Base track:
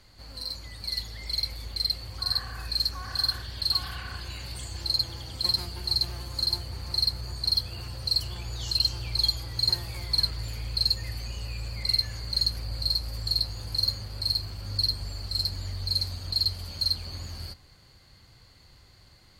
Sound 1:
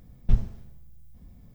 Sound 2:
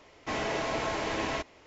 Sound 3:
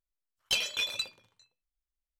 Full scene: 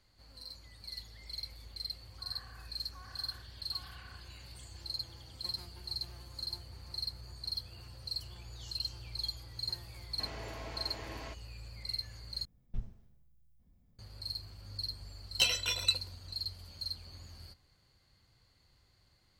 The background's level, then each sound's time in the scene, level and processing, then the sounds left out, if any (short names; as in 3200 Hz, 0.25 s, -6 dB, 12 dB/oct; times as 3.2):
base track -13 dB
9.92 add 2 -14.5 dB
12.45 replace with 1 -17.5 dB
14.89 add 3 -1 dB + ripple EQ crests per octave 2, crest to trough 13 dB